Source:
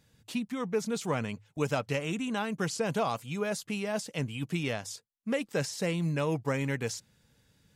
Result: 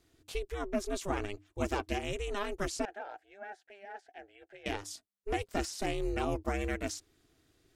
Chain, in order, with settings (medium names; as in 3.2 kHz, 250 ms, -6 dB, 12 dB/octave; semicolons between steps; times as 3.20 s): ring modulator 200 Hz; 2.85–4.66 s: two resonant band-passes 1.1 kHz, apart 1.1 oct